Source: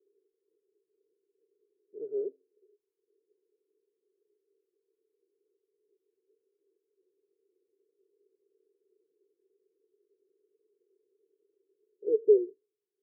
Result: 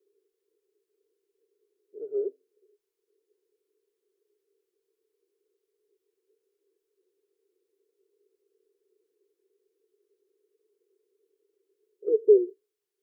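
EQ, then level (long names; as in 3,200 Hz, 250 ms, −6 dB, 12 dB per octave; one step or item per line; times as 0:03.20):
dynamic equaliser 370 Hz, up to +5 dB, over −38 dBFS, Q 4.2
parametric band 170 Hz −11.5 dB 2.5 octaves
+6.5 dB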